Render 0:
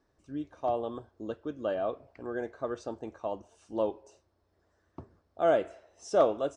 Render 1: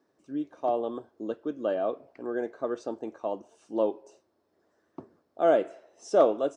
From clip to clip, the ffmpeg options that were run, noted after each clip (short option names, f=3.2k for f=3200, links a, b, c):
-af "highpass=210,equalizer=f=280:w=0.55:g=5.5"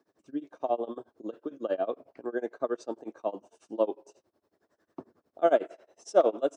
-filter_complex "[0:a]acrossover=split=210[a][b];[a]acompressor=threshold=-55dB:ratio=6[c];[c][b]amix=inputs=2:normalize=0,tremolo=f=11:d=0.95,volume=2.5dB"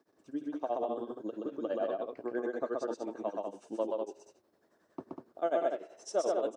-filter_complex "[0:a]acompressor=threshold=-35dB:ratio=2,asplit=2[a][b];[b]aecho=0:1:125.4|195.3:0.794|0.562[c];[a][c]amix=inputs=2:normalize=0"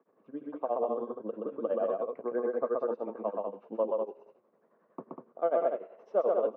-af "highpass=f=130:w=0.5412,highpass=f=130:w=1.3066,equalizer=f=210:t=q:w=4:g=5,equalizer=f=310:t=q:w=4:g=-6,equalizer=f=490:t=q:w=4:g=8,equalizer=f=1.1k:t=q:w=4:g=7,equalizer=f=1.7k:t=q:w=4:g=-6,lowpass=f=2.3k:w=0.5412,lowpass=f=2.3k:w=1.3066"